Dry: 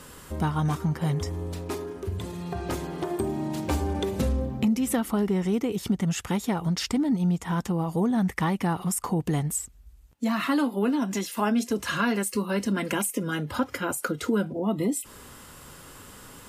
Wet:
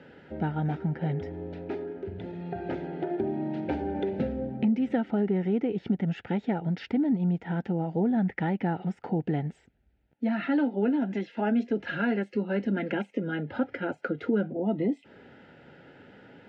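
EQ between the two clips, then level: BPF 160–2300 Hz; Butterworth band-stop 1100 Hz, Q 2.2; air absorption 180 m; 0.0 dB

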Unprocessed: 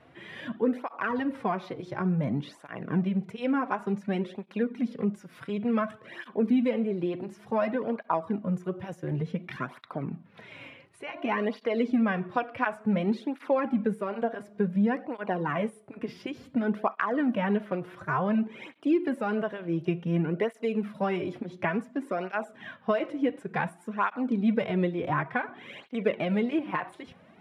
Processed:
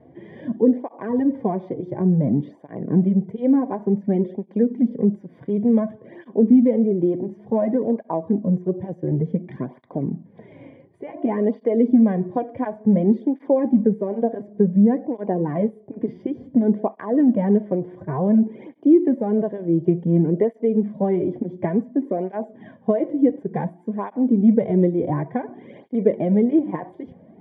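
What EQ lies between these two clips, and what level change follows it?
running mean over 33 samples; bell 320 Hz +6 dB 2.1 oct; +5.5 dB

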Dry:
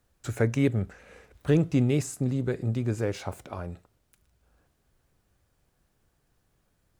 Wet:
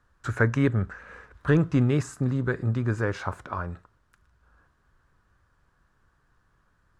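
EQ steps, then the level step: air absorption 56 m; low shelf 110 Hz +5.5 dB; band shelf 1300 Hz +11.5 dB 1.1 oct; 0.0 dB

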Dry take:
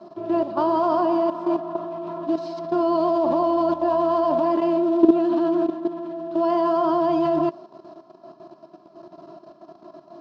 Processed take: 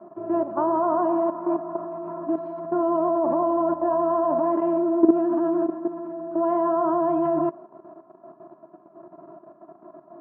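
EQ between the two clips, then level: LPF 1700 Hz 24 dB/oct; low shelf 64 Hz -10 dB; -1.5 dB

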